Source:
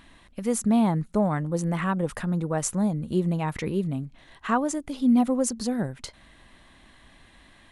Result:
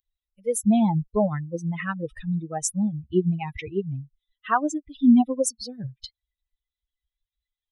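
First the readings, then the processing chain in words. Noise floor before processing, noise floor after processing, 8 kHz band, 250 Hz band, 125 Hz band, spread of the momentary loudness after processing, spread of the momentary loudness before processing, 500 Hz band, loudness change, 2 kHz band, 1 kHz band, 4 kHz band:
-55 dBFS, under -85 dBFS, +1.5 dB, +1.0 dB, -0.5 dB, 17 LU, 12 LU, +1.0 dB, +1.5 dB, +1.0 dB, +1.0 dB, 0.0 dB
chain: per-bin expansion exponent 3; gain +6.5 dB

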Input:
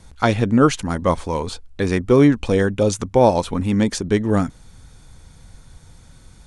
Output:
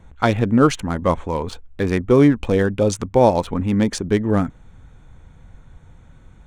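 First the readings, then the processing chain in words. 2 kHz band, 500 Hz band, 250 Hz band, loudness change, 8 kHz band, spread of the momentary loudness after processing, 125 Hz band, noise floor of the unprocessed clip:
-1.0 dB, 0.0 dB, 0.0 dB, 0.0 dB, -2.0 dB, 10 LU, 0.0 dB, -48 dBFS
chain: Wiener smoothing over 9 samples

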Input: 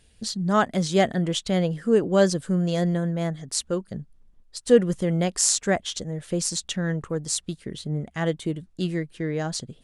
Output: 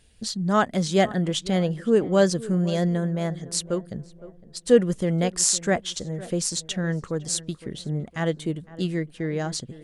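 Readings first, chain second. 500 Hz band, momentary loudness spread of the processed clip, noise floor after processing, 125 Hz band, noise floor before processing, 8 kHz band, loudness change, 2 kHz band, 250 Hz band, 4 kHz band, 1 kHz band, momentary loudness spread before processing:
0.0 dB, 11 LU, -51 dBFS, 0.0 dB, -58 dBFS, 0.0 dB, 0.0 dB, 0.0 dB, 0.0 dB, 0.0 dB, 0.0 dB, 11 LU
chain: tape echo 0.509 s, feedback 48%, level -16 dB, low-pass 1200 Hz

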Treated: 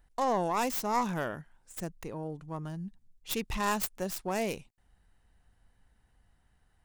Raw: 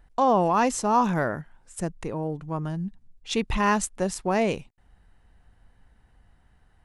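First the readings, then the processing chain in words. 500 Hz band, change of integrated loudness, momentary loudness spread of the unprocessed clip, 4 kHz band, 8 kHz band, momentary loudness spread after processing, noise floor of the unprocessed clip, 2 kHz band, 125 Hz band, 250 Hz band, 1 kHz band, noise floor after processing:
-8.0 dB, -7.5 dB, 12 LU, -4.5 dB, -6.5 dB, 13 LU, -61 dBFS, -7.0 dB, -9.0 dB, -9.0 dB, -8.0 dB, -70 dBFS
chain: tracing distortion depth 0.23 ms; high shelf 4200 Hz +9 dB; gain -8.5 dB

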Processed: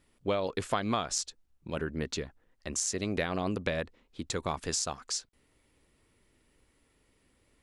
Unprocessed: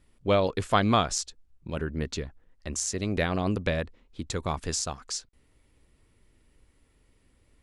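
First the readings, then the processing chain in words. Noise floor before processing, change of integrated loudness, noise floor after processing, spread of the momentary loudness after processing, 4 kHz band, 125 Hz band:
-65 dBFS, -4.5 dB, -71 dBFS, 11 LU, -3.0 dB, -7.5 dB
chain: low shelf 120 Hz -10.5 dB; compressor 6:1, threshold -26 dBFS, peak gain reduction 9 dB

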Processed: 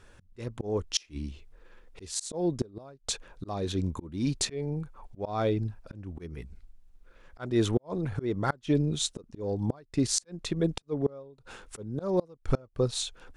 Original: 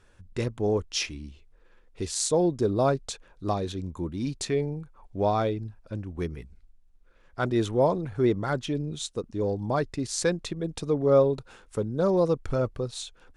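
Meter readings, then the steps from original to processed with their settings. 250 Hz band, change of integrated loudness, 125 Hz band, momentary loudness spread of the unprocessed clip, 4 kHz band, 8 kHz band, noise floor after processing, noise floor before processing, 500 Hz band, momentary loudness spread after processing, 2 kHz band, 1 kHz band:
-2.0 dB, -4.0 dB, -2.0 dB, 13 LU, +0.5 dB, 0.0 dB, -62 dBFS, -58 dBFS, -7.0 dB, 15 LU, -5.0 dB, -7.5 dB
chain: auto swell 0.35 s; flipped gate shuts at -19 dBFS, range -30 dB; gain +4.5 dB

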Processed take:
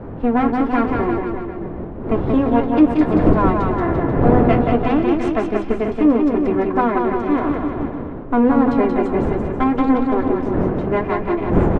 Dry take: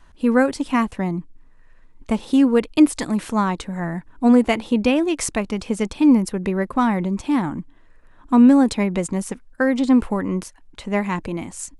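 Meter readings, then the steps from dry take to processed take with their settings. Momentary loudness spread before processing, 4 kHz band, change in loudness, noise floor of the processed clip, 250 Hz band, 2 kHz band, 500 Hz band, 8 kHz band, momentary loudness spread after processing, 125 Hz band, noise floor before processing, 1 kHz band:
12 LU, n/a, +2.0 dB, -29 dBFS, +1.0 dB, -0.5 dB, +5.5 dB, under -20 dB, 8 LU, +7.0 dB, -50 dBFS, +6.0 dB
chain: minimum comb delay 2.9 ms; wind noise 340 Hz -25 dBFS; LPF 1700 Hz 12 dB/oct; notches 50/100/150/200/250 Hz; in parallel at +1 dB: compressor, threshold -24 dBFS, peak gain reduction 15 dB; on the sum: flange 0.61 Hz, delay 9.7 ms, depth 6.9 ms, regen -50%; on a send: bouncing-ball echo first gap 0.18 s, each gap 0.9×, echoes 5; on the sum: gain +2 dB

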